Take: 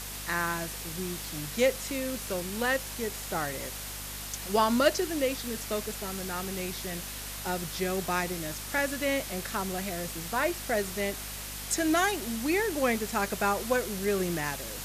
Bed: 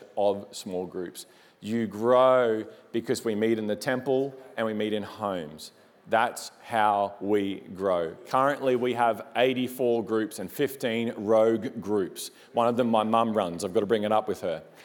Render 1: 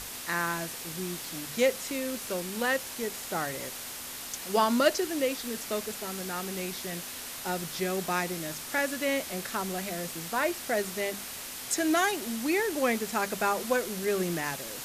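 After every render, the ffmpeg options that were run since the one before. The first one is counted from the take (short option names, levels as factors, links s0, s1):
-af "bandreject=f=50:t=h:w=6,bandreject=f=100:t=h:w=6,bandreject=f=150:t=h:w=6,bandreject=f=200:t=h:w=6"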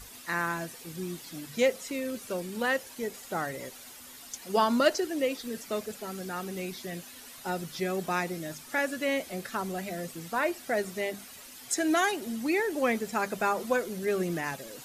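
-af "afftdn=nr=11:nf=-40"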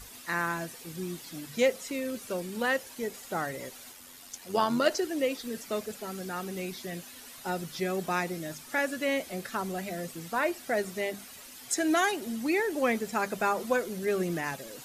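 -filter_complex "[0:a]asplit=3[s0][s1][s2];[s0]afade=t=out:st=3.91:d=0.02[s3];[s1]tremolo=f=92:d=0.462,afade=t=in:st=3.91:d=0.02,afade=t=out:st=4.89:d=0.02[s4];[s2]afade=t=in:st=4.89:d=0.02[s5];[s3][s4][s5]amix=inputs=3:normalize=0"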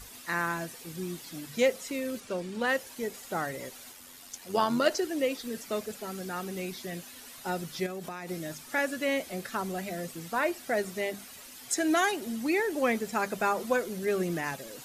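-filter_complex "[0:a]asettb=1/sr,asplit=3[s0][s1][s2];[s0]atrim=end=2.204[s3];[s1]atrim=start=2.2:end=2.69,asetpts=PTS-STARTPTS,afade=t=in:d=0.004:c=qsin,afade=t=out:st=0.486:d=0.004:c=qsin,adynamicsmooth=sensitivity=7.5:basefreq=7200[s4];[s2]atrim=start=2.686[s5];[s3][s4]acrossfade=d=0.004:c1=hsin:c2=qsin[s6];[s6][s5]acrossfade=d=0.004:c1=qsin:c2=hsin,asettb=1/sr,asplit=3[s7][s8][s9];[s7]atrim=end=7.864[s10];[s8]atrim=start=7.86:end=8.29,asetpts=PTS-STARTPTS,afade=t=in:d=0.004:c=qsin,afade=t=out:st=0.426:d=0.004:c=qsin,acompressor=threshold=0.02:ratio=12:attack=3.2:release=140:knee=1:detection=peak[s11];[s9]atrim=start=8.286[s12];[s10][s11]acrossfade=d=0.004:c1=hsin:c2=qsin[s13];[s13][s12]acrossfade=d=0.004:c1=qsin:c2=hsin"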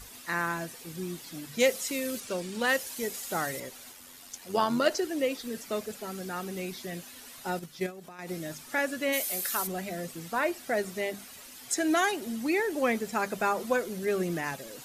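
-filter_complex "[0:a]asettb=1/sr,asplit=3[s0][s1][s2];[s0]atrim=end=1.604[s3];[s1]atrim=start=1.6:end=3.6,asetpts=PTS-STARTPTS,afade=t=in:d=0.004:c=qsin,afade=t=out:st=1.996:d=0.004:c=qsin,highshelf=f=3100:g=9[s4];[s2]atrim=start=3.596[s5];[s3][s4]acrossfade=d=0.004:c1=hsin:c2=qsin[s6];[s6][s5]acrossfade=d=0.004:c1=qsin:c2=hsin,asettb=1/sr,asplit=3[s7][s8][s9];[s7]atrim=end=7.594[s10];[s8]atrim=start=7.59:end=8.19,asetpts=PTS-STARTPTS,afade=t=in:d=0.004:c=qsin,afade=t=out:st=0.596:d=0.004:c=qsin,agate=range=0.398:threshold=0.0141:ratio=16:release=100:detection=peak[s11];[s9]atrim=start=8.186[s12];[s10][s11]acrossfade=d=0.004:c1=hsin:c2=qsin[s13];[s13][s12]acrossfade=d=0.004:c1=qsin:c2=hsin,asplit=3[s14][s15][s16];[s14]afade=t=out:st=9.12:d=0.02[s17];[s15]aemphasis=mode=production:type=riaa,afade=t=in:st=9.12:d=0.02,afade=t=out:st=9.66:d=0.02[s18];[s16]afade=t=in:st=9.66:d=0.02[s19];[s17][s18][s19]amix=inputs=3:normalize=0"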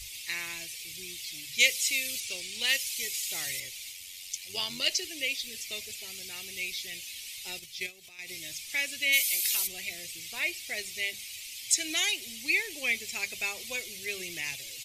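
-af "firequalizer=gain_entry='entry(110,0);entry(170,-20);entry(350,-14);entry(500,-16);entry(1500,-19);entry(2200,10);entry(11000,3)':delay=0.05:min_phase=1"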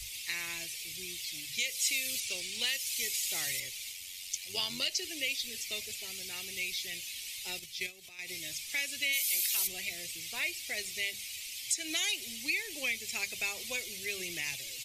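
-filter_complex "[0:a]alimiter=limit=0.126:level=0:latency=1:release=227,acrossover=split=160|3000[s0][s1][s2];[s1]acompressor=threshold=0.0141:ratio=2.5[s3];[s0][s3][s2]amix=inputs=3:normalize=0"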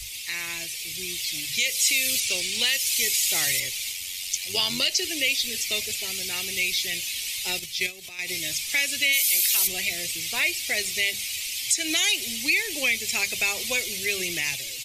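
-filter_complex "[0:a]asplit=2[s0][s1];[s1]alimiter=level_in=1.19:limit=0.0631:level=0:latency=1:release=12,volume=0.841,volume=1[s2];[s0][s2]amix=inputs=2:normalize=0,dynaudnorm=f=400:g=5:m=1.78"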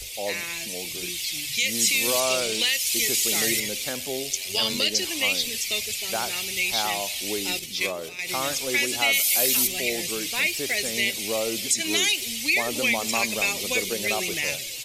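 -filter_complex "[1:a]volume=0.447[s0];[0:a][s0]amix=inputs=2:normalize=0"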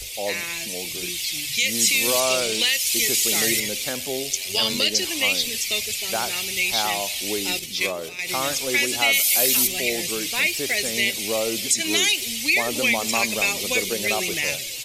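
-af "volume=1.33"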